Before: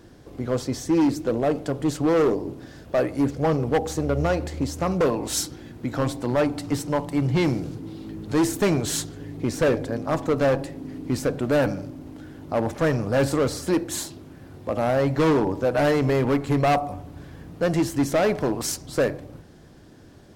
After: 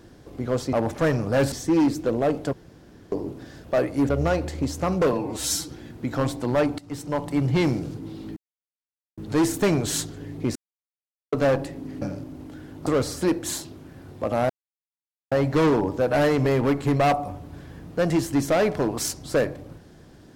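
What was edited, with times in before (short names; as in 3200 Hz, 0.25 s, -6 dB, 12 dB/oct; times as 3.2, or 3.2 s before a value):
1.74–2.33 room tone
3.3–4.08 cut
5.12–5.49 stretch 1.5×
6.59–7.08 fade in, from -18 dB
8.17 insert silence 0.81 s
9.55–10.32 mute
11.01–11.68 cut
12.53–13.32 move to 0.73
14.95 insert silence 0.82 s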